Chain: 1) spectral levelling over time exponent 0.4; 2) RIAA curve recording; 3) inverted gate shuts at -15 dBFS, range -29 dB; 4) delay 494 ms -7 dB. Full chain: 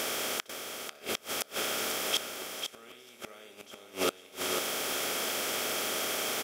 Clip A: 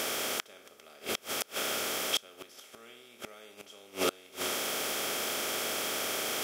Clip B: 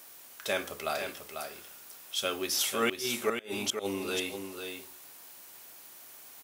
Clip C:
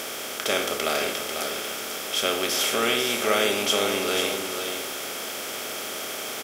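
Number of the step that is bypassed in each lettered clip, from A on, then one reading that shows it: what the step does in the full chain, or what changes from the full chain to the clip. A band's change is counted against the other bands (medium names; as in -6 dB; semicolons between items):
4, momentary loudness spread change +3 LU; 1, 125 Hz band +5.0 dB; 3, momentary loudness spread change -7 LU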